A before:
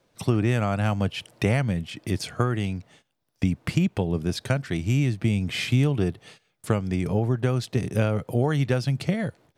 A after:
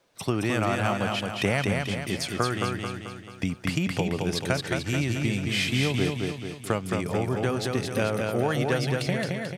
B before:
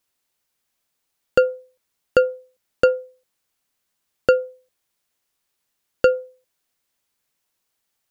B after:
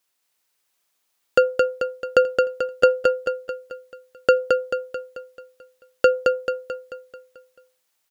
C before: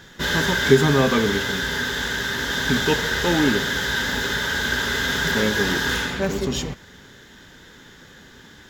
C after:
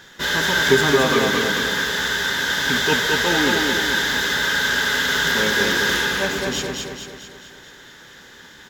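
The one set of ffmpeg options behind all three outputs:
-filter_complex "[0:a]lowshelf=frequency=300:gain=-10.5,asplit=2[link_01][link_02];[link_02]aecho=0:1:219|438|657|876|1095|1314|1533:0.668|0.341|0.174|0.0887|0.0452|0.0231|0.0118[link_03];[link_01][link_03]amix=inputs=2:normalize=0,volume=2dB"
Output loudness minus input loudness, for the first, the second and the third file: −1.5, −0.5, +2.5 LU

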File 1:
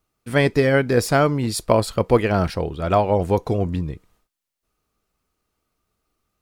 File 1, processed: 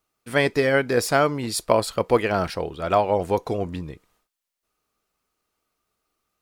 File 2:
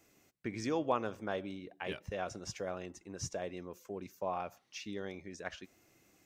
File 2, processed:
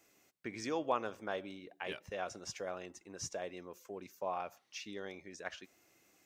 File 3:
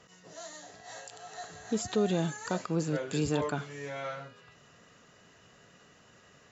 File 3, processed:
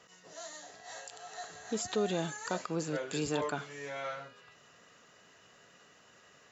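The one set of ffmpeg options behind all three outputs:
-af "lowshelf=frequency=240:gain=-11"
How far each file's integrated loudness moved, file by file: −2.5, −2.0, −3.5 LU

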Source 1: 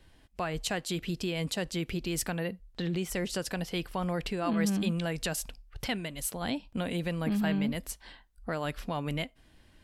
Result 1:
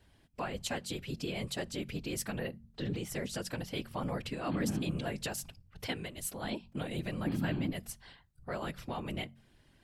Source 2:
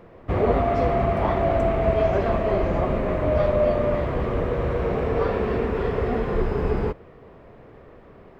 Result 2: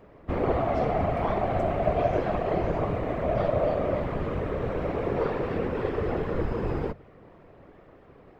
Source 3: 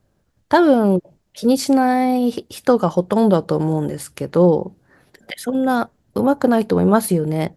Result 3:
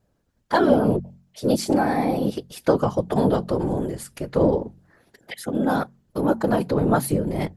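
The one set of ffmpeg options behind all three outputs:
-af "afftfilt=real='hypot(re,im)*cos(2*PI*random(0))':imag='hypot(re,im)*sin(2*PI*random(1))':win_size=512:overlap=0.75,bandreject=frequency=45.27:width_type=h:width=4,bandreject=frequency=90.54:width_type=h:width=4,bandreject=frequency=135.81:width_type=h:width=4,bandreject=frequency=181.08:width_type=h:width=4,bandreject=frequency=226.35:width_type=h:width=4,volume=1.5dB"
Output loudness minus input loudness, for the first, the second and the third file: −5.0, −4.5, −5.0 LU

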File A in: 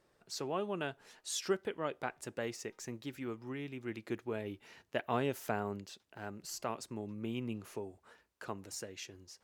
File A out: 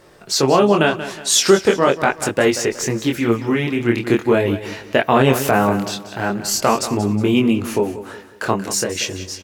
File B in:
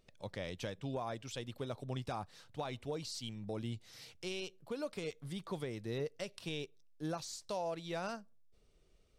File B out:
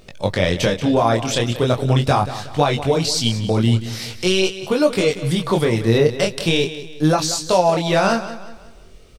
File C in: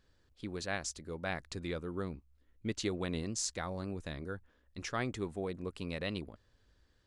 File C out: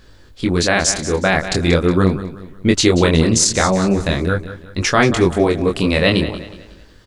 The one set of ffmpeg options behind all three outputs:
-af "flanger=delay=20:depth=6.7:speed=0.42,aecho=1:1:183|366|549|732:0.211|0.0803|0.0305|0.0116,alimiter=level_in=27.5dB:limit=-1dB:release=50:level=0:latency=1,volume=-1dB"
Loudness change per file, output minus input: +22.5, +24.0, +23.0 LU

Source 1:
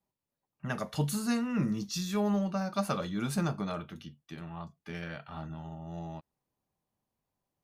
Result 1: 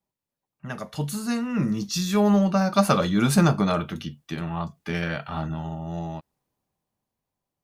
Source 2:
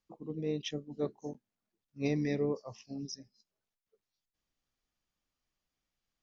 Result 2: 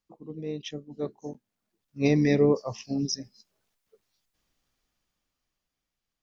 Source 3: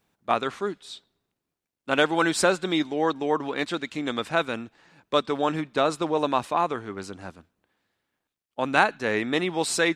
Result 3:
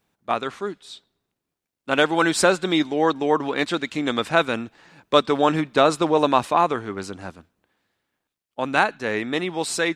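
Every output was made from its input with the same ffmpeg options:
-af "dynaudnorm=framelen=310:gausssize=13:maxgain=13dB"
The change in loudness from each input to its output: +9.5, +9.5, +4.0 LU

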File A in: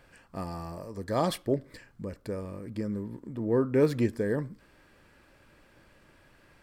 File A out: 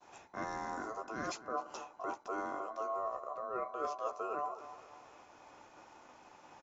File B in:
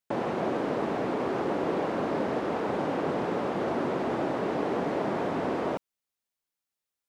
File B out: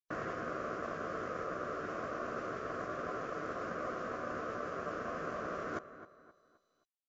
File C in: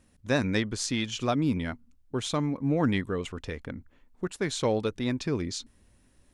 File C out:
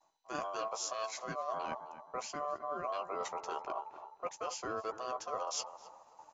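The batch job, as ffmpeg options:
-filter_complex "[0:a]asplit=2[link_01][link_02];[link_02]adelay=14,volume=-7dB[link_03];[link_01][link_03]amix=inputs=2:normalize=0,areverse,acompressor=threshold=-37dB:ratio=10,areverse,agate=range=-33dB:threshold=-57dB:ratio=3:detection=peak,adynamicequalizer=threshold=0.00141:dfrequency=1100:dqfactor=1.1:tfrequency=1100:tqfactor=1.1:attack=5:release=100:ratio=0.375:range=2.5:mode=cutabove:tftype=bell,asplit=2[link_04][link_05];[link_05]adelay=262,lowpass=frequency=1400:poles=1,volume=-12.5dB,asplit=2[link_06][link_07];[link_07]adelay=262,lowpass=frequency=1400:poles=1,volume=0.39,asplit=2[link_08][link_09];[link_09]adelay=262,lowpass=frequency=1400:poles=1,volume=0.39,asplit=2[link_10][link_11];[link_11]adelay=262,lowpass=frequency=1400:poles=1,volume=0.39[link_12];[link_06][link_08][link_10][link_12]amix=inputs=4:normalize=0[link_13];[link_04][link_13]amix=inputs=2:normalize=0,aeval=exprs='val(0)*sin(2*PI*880*n/s)':channel_layout=same,highshelf=frequency=2500:gain=-11,aexciter=amount=3.8:drive=7.7:freq=5300,highpass=frequency=100:poles=1,volume=6dB" -ar 16000 -c:a mp2 -b:a 128k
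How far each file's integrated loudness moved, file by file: −9.0, −10.0, −10.0 LU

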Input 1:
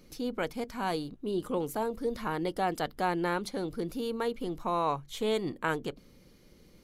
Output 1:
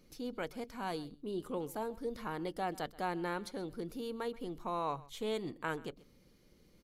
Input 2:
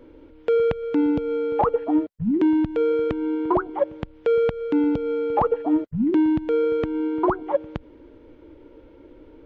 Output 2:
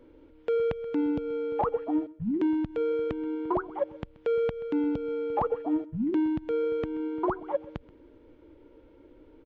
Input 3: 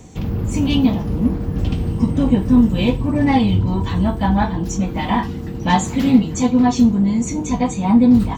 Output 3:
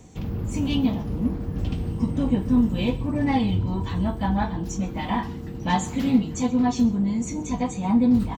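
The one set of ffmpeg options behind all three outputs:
-af "aecho=1:1:130:0.0891,volume=-7dB"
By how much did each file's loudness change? −7.0, −7.0, −7.0 LU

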